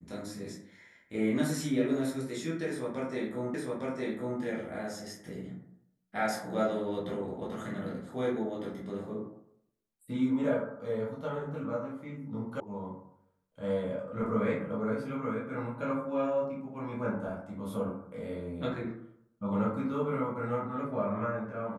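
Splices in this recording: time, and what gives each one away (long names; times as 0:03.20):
0:03.54: the same again, the last 0.86 s
0:12.60: cut off before it has died away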